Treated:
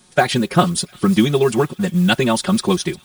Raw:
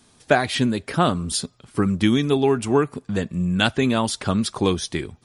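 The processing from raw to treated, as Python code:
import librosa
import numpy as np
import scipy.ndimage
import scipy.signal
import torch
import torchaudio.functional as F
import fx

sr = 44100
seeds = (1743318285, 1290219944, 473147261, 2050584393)

y = fx.high_shelf(x, sr, hz=9300.0, db=4.0)
y = y + 0.84 * np.pad(y, (int(5.5 * sr / 1000.0), 0))[:len(y)]
y = fx.stretch_vocoder(y, sr, factor=0.58)
y = fx.mod_noise(y, sr, seeds[0], snr_db=27)
y = fx.echo_wet_highpass(y, sr, ms=352, feedback_pct=65, hz=2900.0, wet_db=-18.0)
y = F.gain(torch.from_numpy(y), 2.5).numpy()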